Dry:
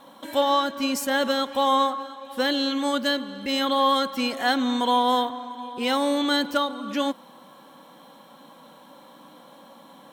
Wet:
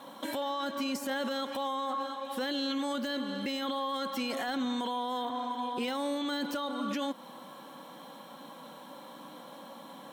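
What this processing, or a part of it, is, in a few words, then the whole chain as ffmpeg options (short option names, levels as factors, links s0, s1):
podcast mastering chain: -af "highpass=110,deesser=0.65,acompressor=threshold=0.0355:ratio=2,alimiter=level_in=1.33:limit=0.0631:level=0:latency=1:release=15,volume=0.75,volume=1.19" -ar 48000 -c:a libmp3lame -b:a 96k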